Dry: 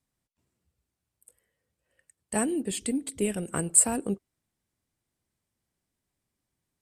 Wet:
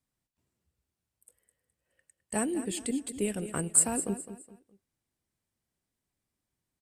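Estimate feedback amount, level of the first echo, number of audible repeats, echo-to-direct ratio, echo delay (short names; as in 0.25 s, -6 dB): 33%, -12.0 dB, 3, -11.5 dB, 0.209 s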